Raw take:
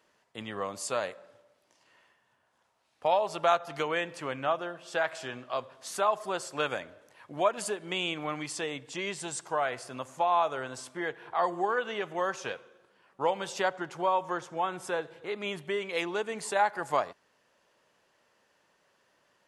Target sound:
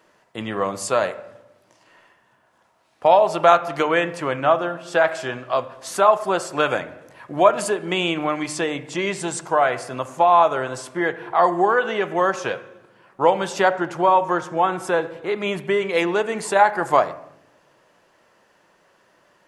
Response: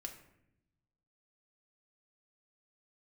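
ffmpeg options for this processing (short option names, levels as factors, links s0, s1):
-filter_complex "[0:a]asplit=2[s0][s1];[1:a]atrim=start_sample=2205,lowpass=2400[s2];[s1][s2]afir=irnorm=-1:irlink=0,volume=1.06[s3];[s0][s3]amix=inputs=2:normalize=0,volume=2.37"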